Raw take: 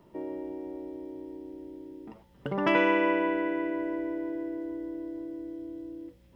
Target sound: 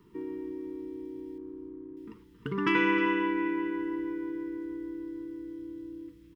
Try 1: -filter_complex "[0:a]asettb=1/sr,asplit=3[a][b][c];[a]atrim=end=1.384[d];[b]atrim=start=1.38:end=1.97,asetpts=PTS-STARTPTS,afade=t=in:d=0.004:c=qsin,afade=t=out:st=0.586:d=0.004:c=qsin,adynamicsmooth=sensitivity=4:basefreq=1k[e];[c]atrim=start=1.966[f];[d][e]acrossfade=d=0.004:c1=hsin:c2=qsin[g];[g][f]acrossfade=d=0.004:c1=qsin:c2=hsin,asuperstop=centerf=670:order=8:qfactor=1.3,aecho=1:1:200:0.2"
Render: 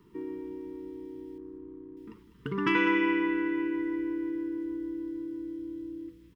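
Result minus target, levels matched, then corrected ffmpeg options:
echo 0.11 s early
-filter_complex "[0:a]asettb=1/sr,asplit=3[a][b][c];[a]atrim=end=1.384[d];[b]atrim=start=1.38:end=1.97,asetpts=PTS-STARTPTS,afade=t=in:d=0.004:c=qsin,afade=t=out:st=0.586:d=0.004:c=qsin,adynamicsmooth=sensitivity=4:basefreq=1k[e];[c]atrim=start=1.966[f];[d][e]acrossfade=d=0.004:c1=hsin:c2=qsin[g];[g][f]acrossfade=d=0.004:c1=qsin:c2=hsin,asuperstop=centerf=670:order=8:qfactor=1.3,aecho=1:1:310:0.2"

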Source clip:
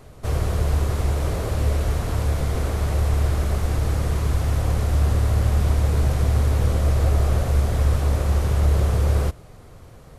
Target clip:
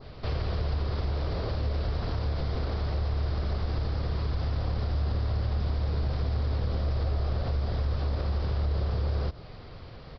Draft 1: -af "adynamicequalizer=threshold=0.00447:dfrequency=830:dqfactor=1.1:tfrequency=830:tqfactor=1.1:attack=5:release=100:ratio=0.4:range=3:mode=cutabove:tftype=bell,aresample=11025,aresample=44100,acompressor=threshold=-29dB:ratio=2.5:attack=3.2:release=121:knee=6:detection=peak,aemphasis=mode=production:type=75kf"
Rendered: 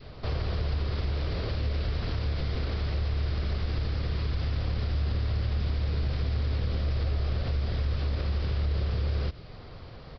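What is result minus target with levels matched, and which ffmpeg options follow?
1000 Hz band -3.5 dB
-af "adynamicequalizer=threshold=0.00447:dfrequency=2500:dqfactor=1.1:tfrequency=2500:tqfactor=1.1:attack=5:release=100:ratio=0.4:range=3:mode=cutabove:tftype=bell,aresample=11025,aresample=44100,acompressor=threshold=-29dB:ratio=2.5:attack=3.2:release=121:knee=6:detection=peak,aemphasis=mode=production:type=75kf"

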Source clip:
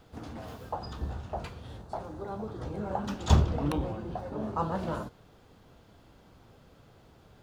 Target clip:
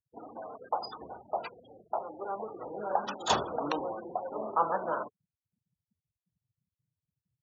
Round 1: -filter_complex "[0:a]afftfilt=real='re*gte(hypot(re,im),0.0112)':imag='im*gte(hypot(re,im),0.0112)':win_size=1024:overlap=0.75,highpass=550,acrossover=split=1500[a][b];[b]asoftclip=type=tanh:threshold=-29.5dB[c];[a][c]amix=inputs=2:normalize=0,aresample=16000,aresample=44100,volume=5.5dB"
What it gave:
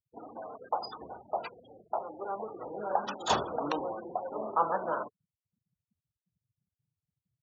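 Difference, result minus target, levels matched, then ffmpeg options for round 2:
soft clip: distortion +14 dB
-filter_complex "[0:a]afftfilt=real='re*gte(hypot(re,im),0.0112)':imag='im*gte(hypot(re,im),0.0112)':win_size=1024:overlap=0.75,highpass=550,acrossover=split=1500[a][b];[b]asoftclip=type=tanh:threshold=-20dB[c];[a][c]amix=inputs=2:normalize=0,aresample=16000,aresample=44100,volume=5.5dB"

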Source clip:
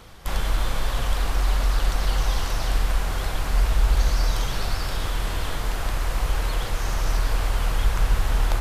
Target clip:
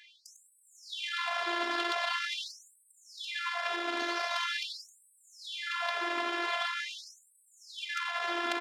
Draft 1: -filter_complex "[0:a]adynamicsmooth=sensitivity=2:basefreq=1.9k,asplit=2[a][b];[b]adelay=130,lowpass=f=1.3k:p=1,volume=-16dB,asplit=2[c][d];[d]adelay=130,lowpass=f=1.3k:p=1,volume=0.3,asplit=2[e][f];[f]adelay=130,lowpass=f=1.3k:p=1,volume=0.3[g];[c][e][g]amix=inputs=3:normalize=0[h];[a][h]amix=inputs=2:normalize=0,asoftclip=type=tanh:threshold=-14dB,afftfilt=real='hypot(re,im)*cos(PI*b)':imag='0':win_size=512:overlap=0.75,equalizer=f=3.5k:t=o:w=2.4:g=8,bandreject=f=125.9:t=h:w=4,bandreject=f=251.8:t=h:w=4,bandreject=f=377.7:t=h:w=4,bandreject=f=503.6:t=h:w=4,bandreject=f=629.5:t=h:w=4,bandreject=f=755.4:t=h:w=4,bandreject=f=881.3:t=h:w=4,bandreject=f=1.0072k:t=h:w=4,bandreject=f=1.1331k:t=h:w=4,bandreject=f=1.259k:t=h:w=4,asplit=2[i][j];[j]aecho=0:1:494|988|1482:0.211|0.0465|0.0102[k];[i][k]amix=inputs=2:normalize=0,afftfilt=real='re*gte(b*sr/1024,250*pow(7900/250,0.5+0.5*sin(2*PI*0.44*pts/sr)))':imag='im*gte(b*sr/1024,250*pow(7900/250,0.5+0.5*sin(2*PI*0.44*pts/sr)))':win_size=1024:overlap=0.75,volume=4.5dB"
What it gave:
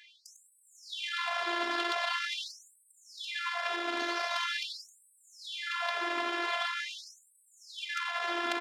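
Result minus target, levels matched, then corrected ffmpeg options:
125 Hz band +6.0 dB
-filter_complex "[0:a]adynamicsmooth=sensitivity=2:basefreq=1.9k,asplit=2[a][b];[b]adelay=130,lowpass=f=1.3k:p=1,volume=-16dB,asplit=2[c][d];[d]adelay=130,lowpass=f=1.3k:p=1,volume=0.3,asplit=2[e][f];[f]adelay=130,lowpass=f=1.3k:p=1,volume=0.3[g];[c][e][g]amix=inputs=3:normalize=0[h];[a][h]amix=inputs=2:normalize=0,asoftclip=type=tanh:threshold=-14dB,afftfilt=real='hypot(re,im)*cos(PI*b)':imag='0':win_size=512:overlap=0.75,highpass=f=73:p=1,equalizer=f=3.5k:t=o:w=2.4:g=8,bandreject=f=125.9:t=h:w=4,bandreject=f=251.8:t=h:w=4,bandreject=f=377.7:t=h:w=4,bandreject=f=503.6:t=h:w=4,bandreject=f=629.5:t=h:w=4,bandreject=f=755.4:t=h:w=4,bandreject=f=881.3:t=h:w=4,bandreject=f=1.0072k:t=h:w=4,bandreject=f=1.1331k:t=h:w=4,bandreject=f=1.259k:t=h:w=4,asplit=2[i][j];[j]aecho=0:1:494|988|1482:0.211|0.0465|0.0102[k];[i][k]amix=inputs=2:normalize=0,afftfilt=real='re*gte(b*sr/1024,250*pow(7900/250,0.5+0.5*sin(2*PI*0.44*pts/sr)))':imag='im*gte(b*sr/1024,250*pow(7900/250,0.5+0.5*sin(2*PI*0.44*pts/sr)))':win_size=1024:overlap=0.75,volume=4.5dB"

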